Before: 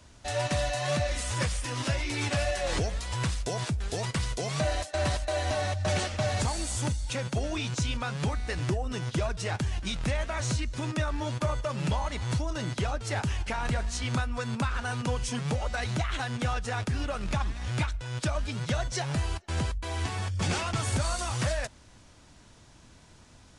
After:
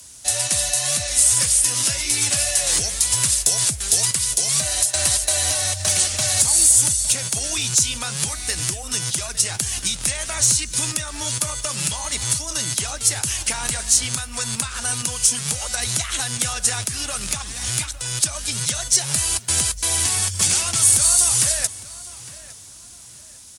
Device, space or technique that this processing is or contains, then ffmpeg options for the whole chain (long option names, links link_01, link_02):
FM broadcast chain: -filter_complex "[0:a]highpass=42,dynaudnorm=framelen=660:gausssize=9:maxgain=6dB,acrossover=split=120|900[link_01][link_02][link_03];[link_01]acompressor=threshold=-31dB:ratio=4[link_04];[link_02]acompressor=threshold=-33dB:ratio=4[link_05];[link_03]acompressor=threshold=-31dB:ratio=4[link_06];[link_04][link_05][link_06]amix=inputs=3:normalize=0,aemphasis=mode=production:type=75fm,alimiter=limit=-13.5dB:level=0:latency=1:release=452,asoftclip=type=hard:threshold=-16.5dB,lowpass=frequency=15000:width=0.5412,lowpass=frequency=15000:width=1.3066,aemphasis=mode=production:type=75fm,asplit=2[link_07][link_08];[link_08]adelay=859,lowpass=frequency=4300:poles=1,volume=-16.5dB,asplit=2[link_09][link_10];[link_10]adelay=859,lowpass=frequency=4300:poles=1,volume=0.33,asplit=2[link_11][link_12];[link_12]adelay=859,lowpass=frequency=4300:poles=1,volume=0.33[link_13];[link_07][link_09][link_11][link_13]amix=inputs=4:normalize=0"